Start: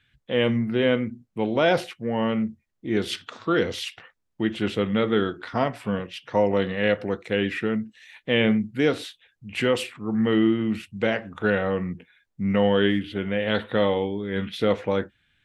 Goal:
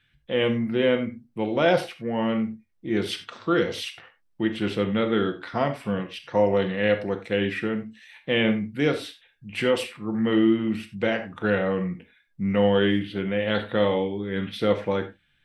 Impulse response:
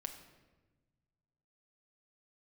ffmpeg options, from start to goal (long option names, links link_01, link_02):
-filter_complex "[0:a]bandreject=frequency=6900:width=8.5[link_01];[1:a]atrim=start_sample=2205,atrim=end_sample=4410[link_02];[link_01][link_02]afir=irnorm=-1:irlink=0,volume=2dB"